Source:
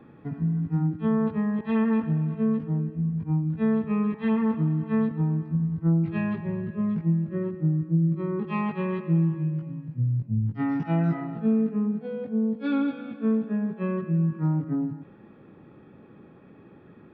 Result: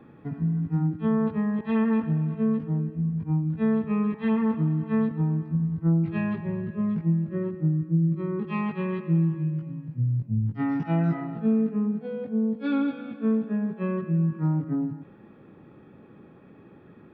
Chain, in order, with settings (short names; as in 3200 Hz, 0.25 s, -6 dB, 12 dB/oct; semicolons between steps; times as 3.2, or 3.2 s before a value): 7.68–10.08 dynamic EQ 740 Hz, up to -4 dB, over -47 dBFS, Q 1.3